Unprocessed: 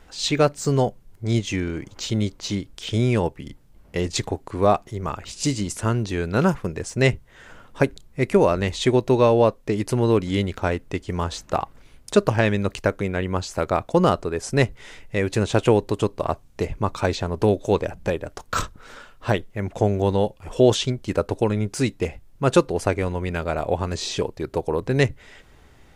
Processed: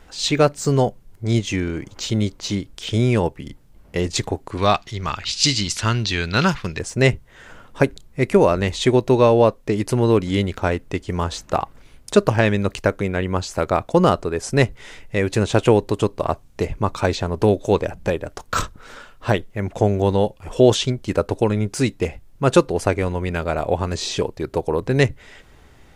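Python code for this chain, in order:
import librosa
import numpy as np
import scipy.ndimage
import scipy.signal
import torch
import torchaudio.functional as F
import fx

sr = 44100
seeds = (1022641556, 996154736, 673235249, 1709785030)

y = fx.curve_eq(x, sr, hz=(110.0, 490.0, 4300.0, 9400.0), db=(0, -6, 14, -3), at=(4.57, 6.79))
y = y * 10.0 ** (2.5 / 20.0)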